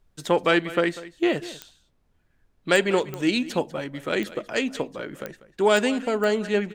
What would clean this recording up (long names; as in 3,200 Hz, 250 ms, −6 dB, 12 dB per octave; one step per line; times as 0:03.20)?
click removal
downward expander −56 dBFS, range −21 dB
echo removal 194 ms −17 dB